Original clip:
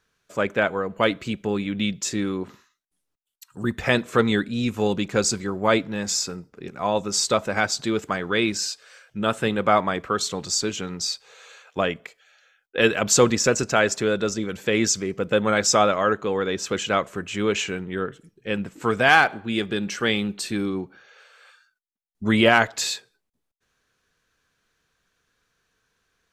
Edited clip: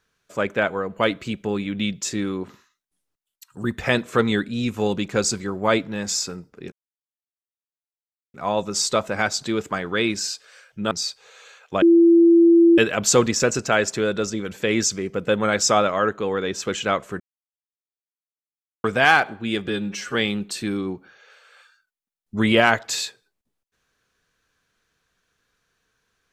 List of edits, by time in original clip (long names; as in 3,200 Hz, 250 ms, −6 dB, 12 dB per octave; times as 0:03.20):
0:06.72: splice in silence 1.62 s
0:09.29–0:10.95: remove
0:11.86–0:12.82: beep over 337 Hz −9.5 dBFS
0:17.24–0:18.88: silence
0:19.72–0:20.03: time-stretch 1.5×